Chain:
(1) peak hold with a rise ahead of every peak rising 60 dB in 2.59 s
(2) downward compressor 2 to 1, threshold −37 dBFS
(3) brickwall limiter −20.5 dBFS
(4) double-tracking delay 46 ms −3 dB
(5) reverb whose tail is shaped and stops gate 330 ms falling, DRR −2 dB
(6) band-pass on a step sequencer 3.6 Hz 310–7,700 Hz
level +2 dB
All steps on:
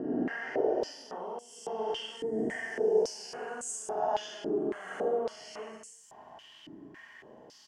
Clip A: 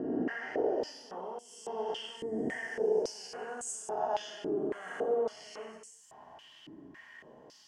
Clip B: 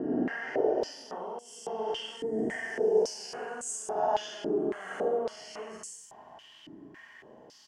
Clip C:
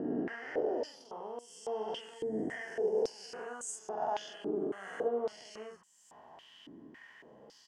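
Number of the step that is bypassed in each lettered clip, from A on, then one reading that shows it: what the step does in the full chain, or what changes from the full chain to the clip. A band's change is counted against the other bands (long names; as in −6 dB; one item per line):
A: 4, change in crest factor −2.0 dB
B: 2, average gain reduction 13.0 dB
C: 5, change in crest factor −3.0 dB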